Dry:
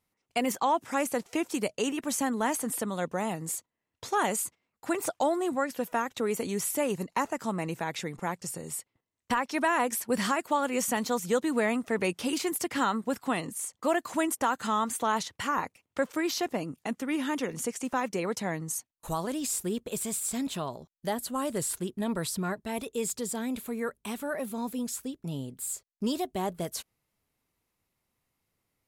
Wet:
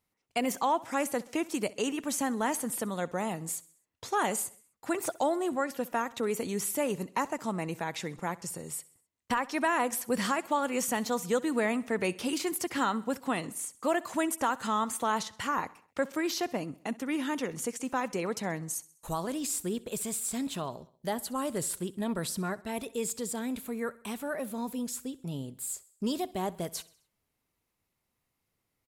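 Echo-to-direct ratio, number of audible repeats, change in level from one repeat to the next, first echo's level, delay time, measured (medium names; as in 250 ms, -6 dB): -19.5 dB, 3, -5.5 dB, -21.0 dB, 65 ms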